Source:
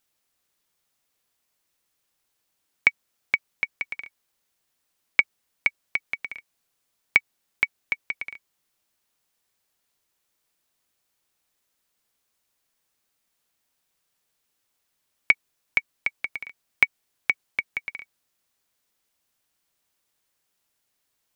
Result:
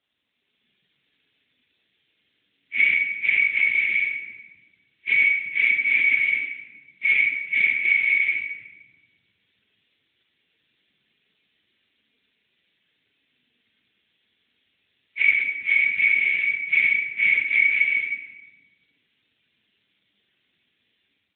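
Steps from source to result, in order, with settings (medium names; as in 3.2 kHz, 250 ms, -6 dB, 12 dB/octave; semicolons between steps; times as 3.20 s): phase randomisation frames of 200 ms; harmonic-percussive split harmonic +4 dB; bass shelf 480 Hz -5.5 dB; peak limiter -16 dBFS, peak gain reduction 8 dB; level rider gain up to 8 dB; flange 0.17 Hz, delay 3.1 ms, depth 8.9 ms, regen -23%; compression 10:1, threshold -24 dBFS, peak gain reduction 9 dB; Butterworth band-stop 900 Hz, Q 0.55; simulated room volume 920 m³, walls mixed, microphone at 1.5 m; trim +8.5 dB; AMR-NB 12.2 kbps 8 kHz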